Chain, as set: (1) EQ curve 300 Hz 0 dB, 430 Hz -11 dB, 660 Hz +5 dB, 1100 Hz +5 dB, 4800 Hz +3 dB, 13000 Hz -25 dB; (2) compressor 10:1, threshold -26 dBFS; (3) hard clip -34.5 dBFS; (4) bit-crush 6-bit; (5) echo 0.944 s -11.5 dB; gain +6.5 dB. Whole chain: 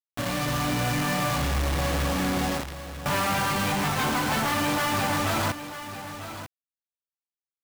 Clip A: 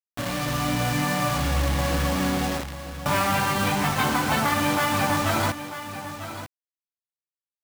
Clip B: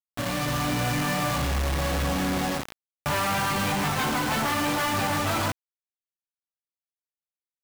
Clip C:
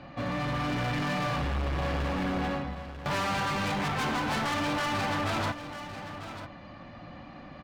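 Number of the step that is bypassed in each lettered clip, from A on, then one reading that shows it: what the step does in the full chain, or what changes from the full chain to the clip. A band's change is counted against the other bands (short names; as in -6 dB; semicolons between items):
3, distortion -7 dB; 5, momentary loudness spread change -7 LU; 4, distortion -7 dB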